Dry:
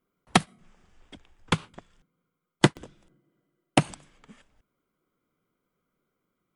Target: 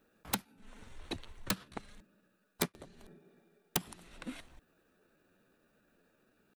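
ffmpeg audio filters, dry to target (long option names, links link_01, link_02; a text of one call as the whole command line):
ffmpeg -i in.wav -af "acompressor=threshold=-38dB:ratio=12,asetrate=52444,aresample=44100,atempo=0.840896,aeval=exprs='(mod(26.6*val(0)+1,2)-1)/26.6':channel_layout=same,volume=8.5dB" out.wav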